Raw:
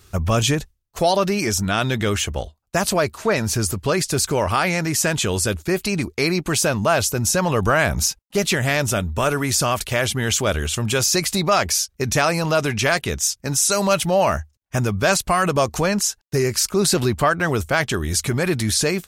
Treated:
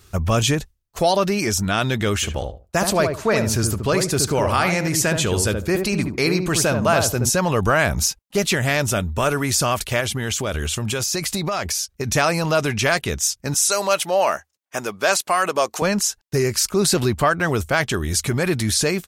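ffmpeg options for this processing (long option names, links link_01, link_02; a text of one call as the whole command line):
ffmpeg -i in.wav -filter_complex "[0:a]asplit=3[link_01][link_02][link_03];[link_01]afade=type=out:start_time=2.22:duration=0.02[link_04];[link_02]asplit=2[link_05][link_06];[link_06]adelay=73,lowpass=frequency=920:poles=1,volume=-3.5dB,asplit=2[link_07][link_08];[link_08]adelay=73,lowpass=frequency=920:poles=1,volume=0.24,asplit=2[link_09][link_10];[link_10]adelay=73,lowpass=frequency=920:poles=1,volume=0.24[link_11];[link_05][link_07][link_09][link_11]amix=inputs=4:normalize=0,afade=type=in:start_time=2.22:duration=0.02,afade=type=out:start_time=7.28:duration=0.02[link_12];[link_03]afade=type=in:start_time=7.28:duration=0.02[link_13];[link_04][link_12][link_13]amix=inputs=3:normalize=0,asettb=1/sr,asplit=3[link_14][link_15][link_16];[link_14]atrim=end=10.004[link_17];[link_15]atrim=start=10:end=12.12,asetpts=PTS-STARTPTS,afade=type=in:duration=0.004:curve=qsin,afade=type=out:start_time=2.116:duration=0.004:curve=qsin,acompressor=threshold=-19dB:ratio=6:attack=3.2:release=140:knee=1:detection=peak[link_18];[link_16]atrim=start=12.116[link_19];[link_17][link_18]acrossfade=duration=0.004:curve1=hsin:curve2=qsin[link_20];[link_20][link_19]acrossfade=duration=0.004:curve1=qsin:curve2=hsin,asettb=1/sr,asplit=3[link_21][link_22][link_23];[link_21]atrim=end=13.544[link_24];[link_22]atrim=start=13.54:end=15.82,asetpts=PTS-STARTPTS,afade=type=in:duration=0.004:curve=qsin,afade=type=out:start_time=2.276:duration=0.004:curve=qsin,highpass=390[link_25];[link_23]atrim=start=15.816[link_26];[link_24][link_25]acrossfade=duration=0.004:curve1=hsin:curve2=qsin[link_27];[link_27][link_26]acrossfade=duration=0.004:curve1=qsin:curve2=hsin" out.wav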